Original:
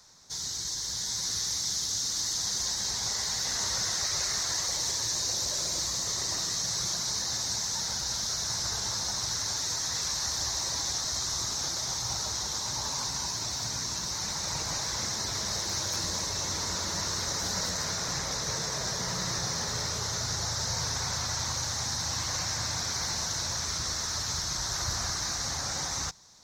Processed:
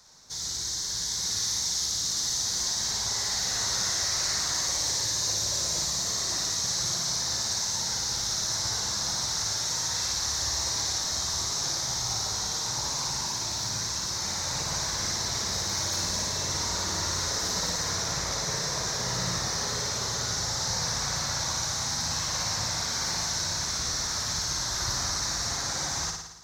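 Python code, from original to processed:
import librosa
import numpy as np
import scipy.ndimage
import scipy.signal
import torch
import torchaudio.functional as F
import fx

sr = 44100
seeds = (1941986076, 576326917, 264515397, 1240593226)

y = fx.room_flutter(x, sr, wall_m=9.7, rt60_s=0.87)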